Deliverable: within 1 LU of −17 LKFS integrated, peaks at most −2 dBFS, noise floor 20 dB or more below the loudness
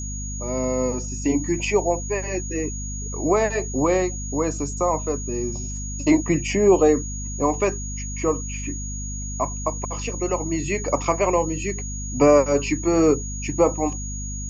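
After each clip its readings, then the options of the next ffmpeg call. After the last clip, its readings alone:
mains hum 50 Hz; hum harmonics up to 250 Hz; level of the hum −29 dBFS; interfering tone 6,700 Hz; level of the tone −33 dBFS; integrated loudness −23.0 LKFS; sample peak −6.0 dBFS; target loudness −17.0 LKFS
→ -af "bandreject=frequency=50:width_type=h:width=4,bandreject=frequency=100:width_type=h:width=4,bandreject=frequency=150:width_type=h:width=4,bandreject=frequency=200:width_type=h:width=4,bandreject=frequency=250:width_type=h:width=4"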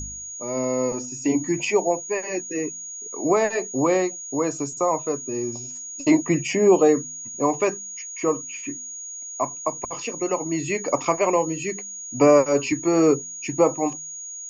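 mains hum none found; interfering tone 6,700 Hz; level of the tone −33 dBFS
→ -af "bandreject=frequency=6700:width=30"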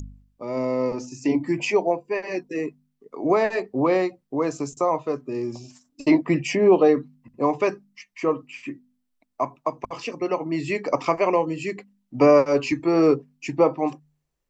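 interfering tone none found; integrated loudness −23.0 LKFS; sample peak −6.5 dBFS; target loudness −17.0 LKFS
→ -af "volume=6dB,alimiter=limit=-2dB:level=0:latency=1"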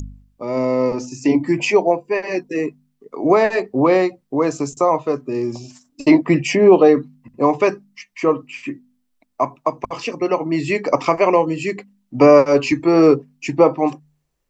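integrated loudness −17.5 LKFS; sample peak −2.0 dBFS; background noise floor −69 dBFS

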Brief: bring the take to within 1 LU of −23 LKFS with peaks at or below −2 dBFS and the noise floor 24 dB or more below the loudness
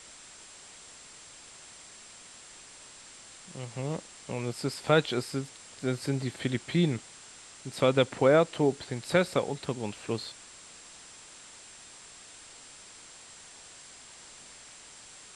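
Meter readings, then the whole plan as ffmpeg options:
interfering tone 7,600 Hz; level of the tone −54 dBFS; background noise floor −51 dBFS; target noise floor −54 dBFS; integrated loudness −29.5 LKFS; sample peak −10.0 dBFS; target loudness −23.0 LKFS
→ -af "bandreject=frequency=7600:width=30"
-af "afftdn=noise_reduction=6:noise_floor=-51"
-af "volume=6.5dB"

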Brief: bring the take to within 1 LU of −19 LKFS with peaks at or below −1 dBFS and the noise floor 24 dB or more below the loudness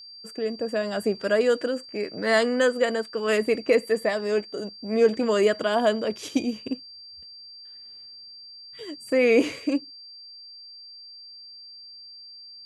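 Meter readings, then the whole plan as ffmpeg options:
interfering tone 4,700 Hz; level of the tone −42 dBFS; integrated loudness −24.5 LKFS; sample peak −8.5 dBFS; target loudness −19.0 LKFS
→ -af "bandreject=frequency=4700:width=30"
-af "volume=5.5dB"

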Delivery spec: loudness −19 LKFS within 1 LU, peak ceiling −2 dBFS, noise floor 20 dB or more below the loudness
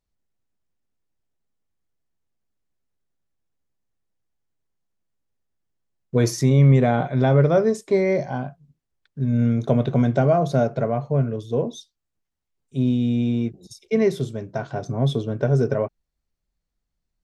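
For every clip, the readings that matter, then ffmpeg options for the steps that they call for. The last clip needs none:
integrated loudness −21.5 LKFS; sample peak −5.5 dBFS; target loudness −19.0 LKFS
→ -af "volume=2.5dB"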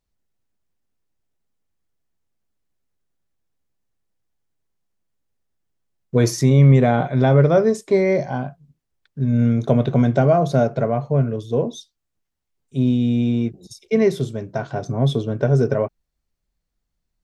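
integrated loudness −19.0 LKFS; sample peak −3.0 dBFS; background noise floor −78 dBFS

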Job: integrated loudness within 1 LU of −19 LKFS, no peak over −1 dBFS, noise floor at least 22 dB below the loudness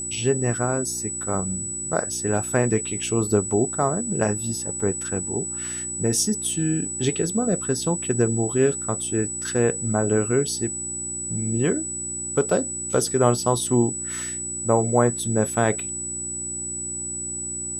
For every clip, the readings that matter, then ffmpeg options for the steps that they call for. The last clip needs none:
mains hum 60 Hz; hum harmonics up to 360 Hz; level of the hum −39 dBFS; interfering tone 7,900 Hz; level of the tone −28 dBFS; integrated loudness −23.5 LKFS; sample peak −5.0 dBFS; target loudness −19.0 LKFS
→ -af "bandreject=frequency=60:width_type=h:width=4,bandreject=frequency=120:width_type=h:width=4,bandreject=frequency=180:width_type=h:width=4,bandreject=frequency=240:width_type=h:width=4,bandreject=frequency=300:width_type=h:width=4,bandreject=frequency=360:width_type=h:width=4"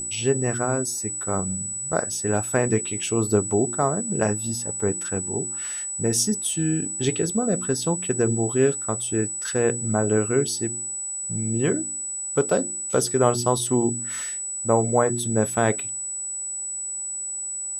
mains hum none found; interfering tone 7,900 Hz; level of the tone −28 dBFS
→ -af "bandreject=frequency=7900:width=30"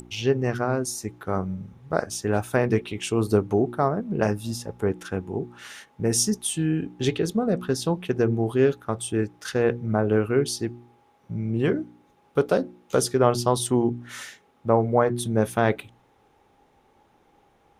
interfering tone none found; integrated loudness −25.0 LKFS; sample peak −5.0 dBFS; target loudness −19.0 LKFS
→ -af "volume=6dB,alimiter=limit=-1dB:level=0:latency=1"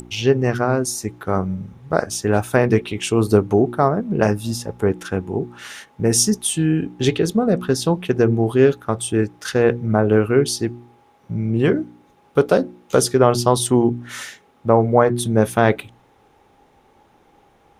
integrated loudness −19.0 LKFS; sample peak −1.0 dBFS; background noise floor −56 dBFS

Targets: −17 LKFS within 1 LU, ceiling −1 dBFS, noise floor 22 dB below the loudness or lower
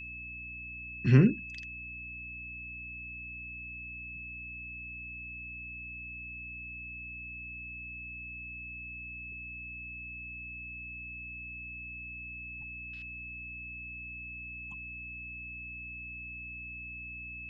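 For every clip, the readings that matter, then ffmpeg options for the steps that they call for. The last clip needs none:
mains hum 60 Hz; hum harmonics up to 300 Hz; level of the hum −48 dBFS; interfering tone 2,600 Hz; level of the tone −41 dBFS; integrated loudness −37.0 LKFS; sample peak −9.5 dBFS; target loudness −17.0 LKFS
→ -af "bandreject=frequency=60:width_type=h:width=4,bandreject=frequency=120:width_type=h:width=4,bandreject=frequency=180:width_type=h:width=4,bandreject=frequency=240:width_type=h:width=4,bandreject=frequency=300:width_type=h:width=4"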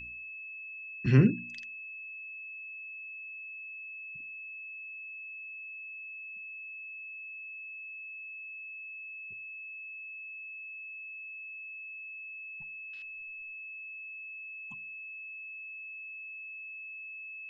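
mains hum none found; interfering tone 2,600 Hz; level of the tone −41 dBFS
→ -af "bandreject=frequency=2600:width=30"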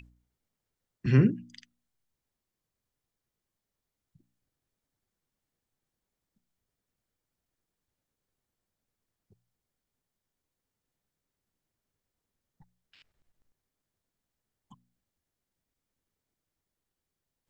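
interfering tone none found; integrated loudness −25.5 LKFS; sample peak −10.0 dBFS; target loudness −17.0 LKFS
→ -af "volume=8.5dB"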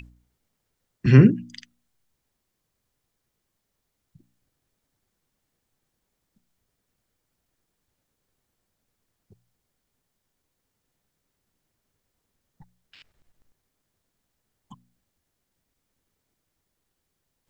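integrated loudness −17.5 LKFS; sample peak −1.5 dBFS; background noise floor −79 dBFS

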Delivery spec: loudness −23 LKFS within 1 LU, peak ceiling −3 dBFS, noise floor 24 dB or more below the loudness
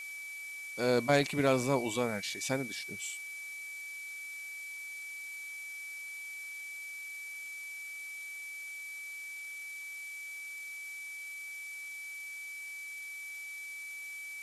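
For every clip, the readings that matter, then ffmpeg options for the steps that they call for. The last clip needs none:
interfering tone 2,300 Hz; level of the tone −41 dBFS; background noise floor −44 dBFS; target noise floor −61 dBFS; integrated loudness −37.0 LKFS; sample peak −15.0 dBFS; target loudness −23.0 LKFS
→ -af "bandreject=frequency=2300:width=30"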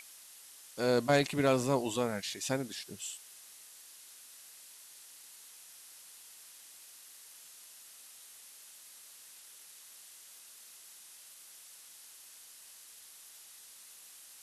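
interfering tone none found; background noise floor −55 dBFS; target noise floor −56 dBFS
→ -af "afftdn=noise_reduction=6:noise_floor=-55"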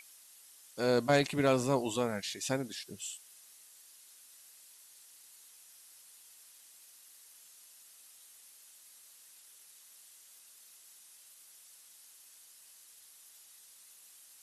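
background noise floor −58 dBFS; integrated loudness −32.0 LKFS; sample peak −15.5 dBFS; target loudness −23.0 LKFS
→ -af "volume=9dB"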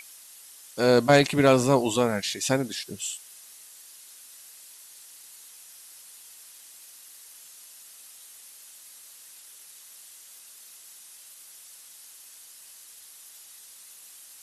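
integrated loudness −23.0 LKFS; sample peak −6.5 dBFS; background noise floor −49 dBFS

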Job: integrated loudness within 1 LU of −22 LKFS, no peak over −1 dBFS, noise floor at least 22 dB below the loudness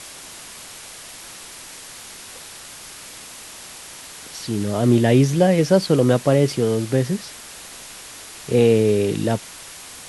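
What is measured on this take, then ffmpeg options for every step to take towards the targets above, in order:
background noise floor −39 dBFS; target noise floor −41 dBFS; integrated loudness −18.5 LKFS; sample peak −3.5 dBFS; target loudness −22.0 LKFS
→ -af "afftdn=noise_reduction=6:noise_floor=-39"
-af "volume=-3.5dB"

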